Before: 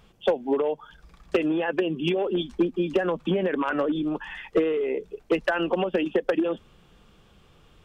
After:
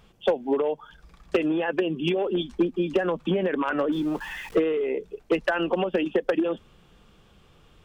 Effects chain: 3.92–4.56 s: jump at every zero crossing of -41 dBFS

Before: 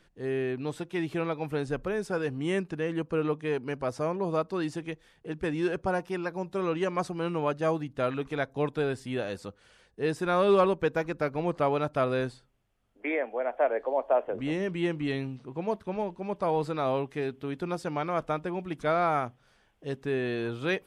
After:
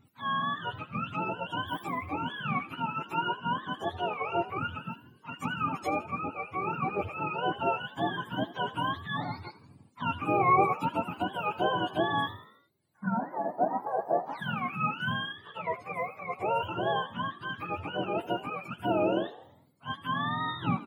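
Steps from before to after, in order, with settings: spectrum inverted on a logarithmic axis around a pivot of 660 Hz; frequency-shifting echo 81 ms, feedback 53%, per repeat +58 Hz, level -17 dB

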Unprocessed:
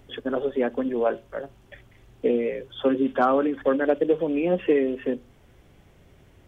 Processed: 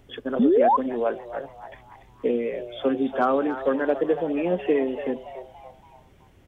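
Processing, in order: frequency-shifting echo 285 ms, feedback 44%, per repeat +130 Hz, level -12.5 dB; painted sound rise, 0.39–0.77 s, 210–1100 Hz -16 dBFS; trim -1.5 dB

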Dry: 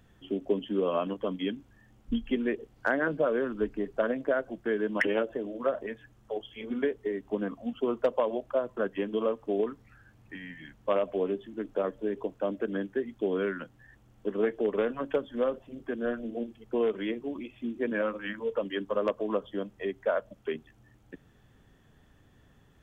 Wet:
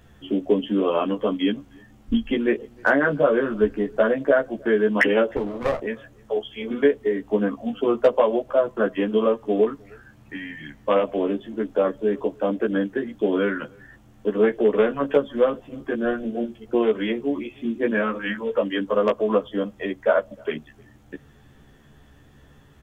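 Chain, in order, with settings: doubling 14 ms -2 dB; echo from a far wall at 53 m, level -28 dB; 5.36–5.80 s: sliding maximum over 17 samples; trim +6.5 dB

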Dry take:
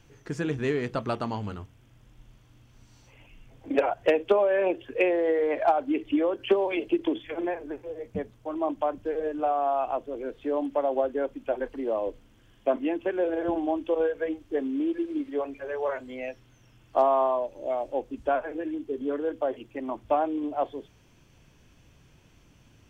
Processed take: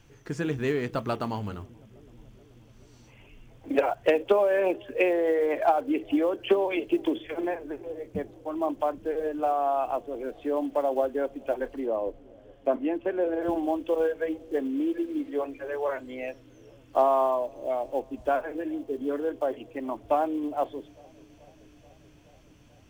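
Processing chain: block-companded coder 7-bit; 11.85–13.41 s: treble shelf 2.5 kHz -> 3.5 kHz -11 dB; feedback echo behind a low-pass 431 ms, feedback 73%, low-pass 530 Hz, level -23 dB

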